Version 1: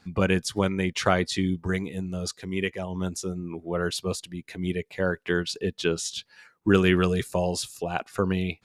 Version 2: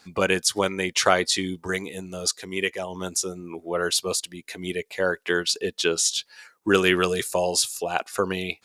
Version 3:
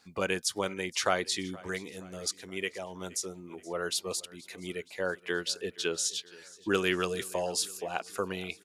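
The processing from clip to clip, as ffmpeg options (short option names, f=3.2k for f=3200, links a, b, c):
-af "bass=f=250:g=-14,treble=f=4k:g=7,volume=4dB"
-af "aecho=1:1:473|946|1419|1892:0.0841|0.0463|0.0255|0.014,volume=-8.5dB"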